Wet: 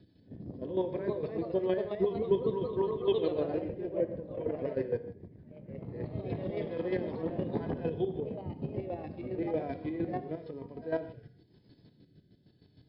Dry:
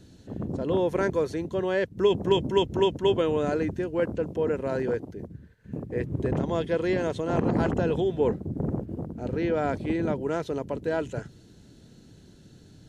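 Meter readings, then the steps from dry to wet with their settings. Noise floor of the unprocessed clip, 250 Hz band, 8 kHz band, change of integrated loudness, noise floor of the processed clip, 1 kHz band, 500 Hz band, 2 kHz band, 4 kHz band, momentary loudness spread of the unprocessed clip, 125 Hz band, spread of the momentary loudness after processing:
-53 dBFS, -7.5 dB, no reading, -7.0 dB, -64 dBFS, -10.0 dB, -6.5 dB, -13.5 dB, -14.0 dB, 10 LU, -8.5 dB, 14 LU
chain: bass shelf 140 Hz +4.5 dB; de-hum 237 Hz, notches 10; harmonic-percussive split percussive -17 dB; rotary cabinet horn 7 Hz, later 1 Hz, at 5.83 s; comb of notches 1.4 kHz; square tremolo 6.5 Hz, depth 65%, duty 30%; reverse echo 100 ms -21.5 dB; ever faster or slower copies 402 ms, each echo +2 st, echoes 2, each echo -6 dB; brick-wall FIR low-pass 5.3 kHz; gated-style reverb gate 170 ms flat, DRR 10.5 dB

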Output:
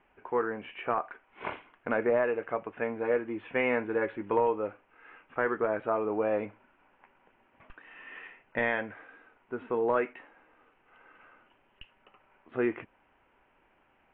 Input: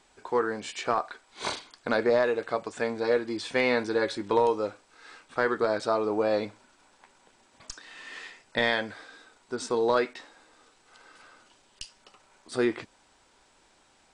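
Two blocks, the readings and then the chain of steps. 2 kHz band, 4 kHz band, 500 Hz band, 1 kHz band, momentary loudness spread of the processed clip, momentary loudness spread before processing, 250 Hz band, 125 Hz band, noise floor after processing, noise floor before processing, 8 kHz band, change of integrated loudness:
-3.0 dB, under -15 dB, -3.0 dB, -3.0 dB, 15 LU, 18 LU, -3.0 dB, -3.0 dB, -68 dBFS, -63 dBFS, under -35 dB, -3.0 dB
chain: steep low-pass 2.9 kHz 72 dB/octave; trim -3 dB

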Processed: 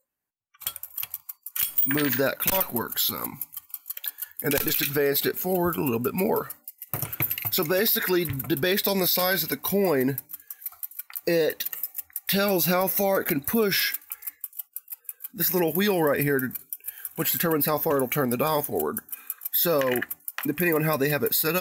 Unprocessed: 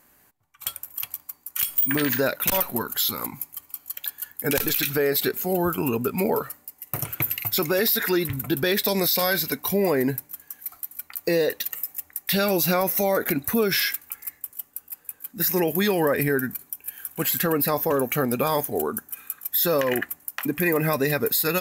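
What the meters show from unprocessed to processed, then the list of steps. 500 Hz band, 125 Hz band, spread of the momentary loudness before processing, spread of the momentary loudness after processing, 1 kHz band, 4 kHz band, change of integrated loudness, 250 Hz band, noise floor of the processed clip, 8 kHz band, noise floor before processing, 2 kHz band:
-1.0 dB, -1.0 dB, 13 LU, 13 LU, -1.0 dB, -1.0 dB, -1.0 dB, -1.0 dB, -63 dBFS, -1.0 dB, -59 dBFS, -1.0 dB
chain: spectral noise reduction 27 dB; trim -1 dB

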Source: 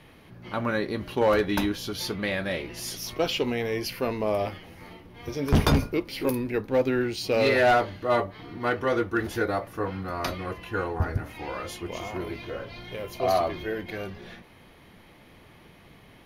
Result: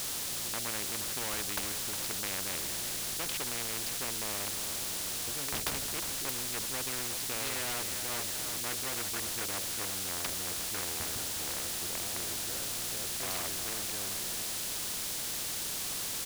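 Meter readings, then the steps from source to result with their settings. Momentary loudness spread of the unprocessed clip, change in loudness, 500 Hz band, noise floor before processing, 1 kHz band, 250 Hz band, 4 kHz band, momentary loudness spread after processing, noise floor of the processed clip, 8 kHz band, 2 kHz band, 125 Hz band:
14 LU, -5.0 dB, -18.0 dB, -53 dBFS, -12.5 dB, -16.0 dB, +1.0 dB, 1 LU, -36 dBFS, +12.0 dB, -8.0 dB, -15.5 dB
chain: local Wiener filter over 41 samples; feedback delay 359 ms, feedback 39%, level -22.5 dB; word length cut 8-bit, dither triangular; band noise 3.5–11 kHz -41 dBFS; spectrum-flattening compressor 4:1; trim -2 dB

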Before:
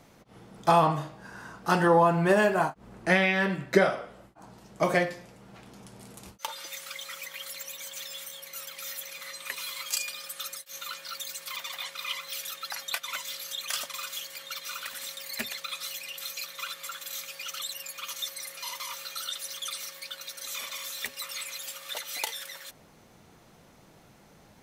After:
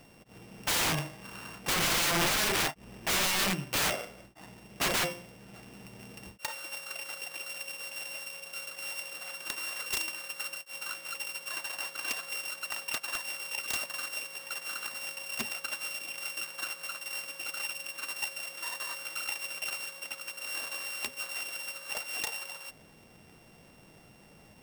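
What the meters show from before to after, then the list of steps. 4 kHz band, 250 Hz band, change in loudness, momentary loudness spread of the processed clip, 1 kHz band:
+0.5 dB, -9.0 dB, -2.5 dB, 13 LU, -8.5 dB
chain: sorted samples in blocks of 16 samples; integer overflow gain 23 dB

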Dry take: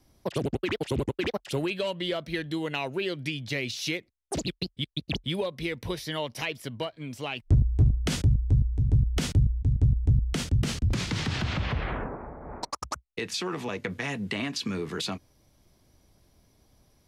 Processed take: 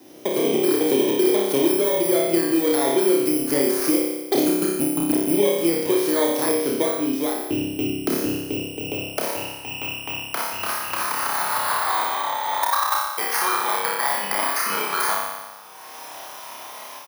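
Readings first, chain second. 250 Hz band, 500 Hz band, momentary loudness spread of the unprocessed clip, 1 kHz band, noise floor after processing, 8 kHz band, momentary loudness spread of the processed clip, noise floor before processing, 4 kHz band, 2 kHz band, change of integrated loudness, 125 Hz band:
+10.5 dB, +12.5 dB, 11 LU, +15.0 dB, -38 dBFS, +13.5 dB, 10 LU, -66 dBFS, +4.5 dB, +7.5 dB, +8.0 dB, -12.5 dB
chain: bit-reversed sample order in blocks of 16 samples; peaking EQ 8.1 kHz -4.5 dB 0.7 oct; doubling 49 ms -6 dB; flutter echo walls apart 5.1 m, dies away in 0.82 s; level rider gain up to 14 dB; high-pass sweep 320 Hz -> 980 Hz, 8.29–9.83 s; three bands compressed up and down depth 70%; trim -6.5 dB

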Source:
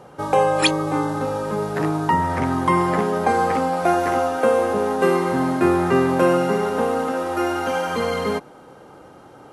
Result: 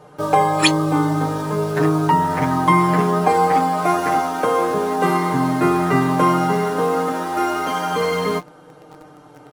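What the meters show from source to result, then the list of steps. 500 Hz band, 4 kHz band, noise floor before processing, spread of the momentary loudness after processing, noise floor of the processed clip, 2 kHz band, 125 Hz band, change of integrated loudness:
-1.0 dB, +2.5 dB, -45 dBFS, 6 LU, -45 dBFS, +1.5 dB, +5.0 dB, +2.0 dB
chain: comb 6.6 ms, depth 95%; flange 0.26 Hz, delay 4.7 ms, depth 2.6 ms, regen +70%; in parallel at -8 dB: word length cut 6-bit, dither none; on the sum: trim +1.5 dB

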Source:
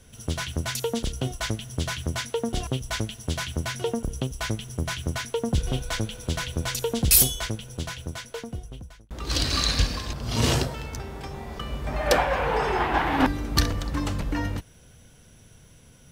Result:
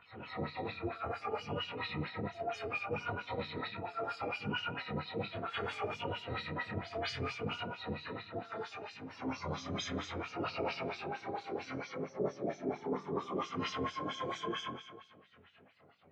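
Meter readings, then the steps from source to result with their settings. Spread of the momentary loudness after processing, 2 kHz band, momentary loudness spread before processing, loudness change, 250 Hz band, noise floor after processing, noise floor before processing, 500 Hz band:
5 LU, -10.0 dB, 13 LU, -13.0 dB, -11.0 dB, -62 dBFS, -52 dBFS, -8.5 dB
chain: spectrum inverted on a logarithmic axis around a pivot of 560 Hz; LFO notch saw down 1.1 Hz 590–7400 Hz; in parallel at -2 dB: upward compressor, threshold -30 dBFS; on the sum: gate -40 dBFS, range -13 dB; distance through air 490 m; band-stop 630 Hz, Q 13; dynamic bell 6 kHz, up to +5 dB, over -57 dBFS, Q 1.7; Schroeder reverb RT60 1.2 s, combs from 27 ms, DRR -0.5 dB; LFO band-pass sine 4.4 Hz 380–6000 Hz; reverse; compression 5:1, threshold -40 dBFS, peak gain reduction 20.5 dB; reverse; pre-echo 213 ms -12.5 dB; detune thickener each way 23 cents; trim +8.5 dB

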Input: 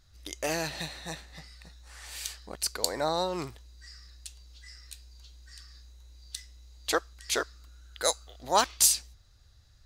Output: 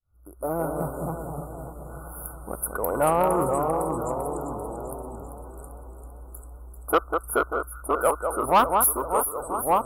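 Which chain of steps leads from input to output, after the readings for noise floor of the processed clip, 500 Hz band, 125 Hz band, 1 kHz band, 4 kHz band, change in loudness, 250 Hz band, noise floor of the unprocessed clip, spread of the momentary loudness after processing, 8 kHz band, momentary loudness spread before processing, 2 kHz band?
-44 dBFS, +9.5 dB, +10.5 dB, +10.5 dB, -11.5 dB, +4.0 dB, +10.5 dB, -59 dBFS, 22 LU, -1.5 dB, 23 LU, +2.5 dB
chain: fade-in on the opening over 0.83 s; FFT band-reject 1.5–9.8 kHz; dynamic bell 1.2 kHz, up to +5 dB, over -47 dBFS, Q 3.6; ever faster or slower copies 114 ms, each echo -2 st, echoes 3, each echo -6 dB; on a send: echo whose repeats swap between lows and highs 196 ms, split 2 kHz, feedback 77%, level -7 dB; on the sum: saturation -19.5 dBFS, distortion -14 dB; trim +8.5 dB

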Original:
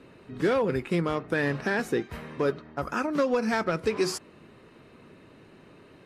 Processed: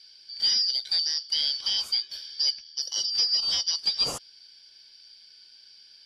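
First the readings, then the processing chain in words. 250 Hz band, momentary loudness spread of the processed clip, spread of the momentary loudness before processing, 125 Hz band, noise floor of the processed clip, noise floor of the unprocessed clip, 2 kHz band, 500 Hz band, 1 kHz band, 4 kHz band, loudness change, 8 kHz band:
under -25 dB, 7 LU, 7 LU, under -20 dB, -54 dBFS, -54 dBFS, -14.5 dB, -23.5 dB, -15.5 dB, +20.0 dB, +3.5 dB, +10.0 dB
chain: four frequency bands reordered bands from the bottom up 4321

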